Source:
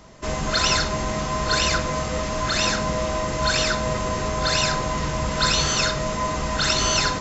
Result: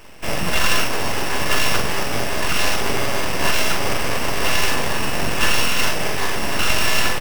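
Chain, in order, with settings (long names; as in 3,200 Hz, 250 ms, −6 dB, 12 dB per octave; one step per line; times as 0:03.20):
samples sorted by size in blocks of 16 samples
full-wave rectification
double-tracking delay 43 ms −7 dB
level +5 dB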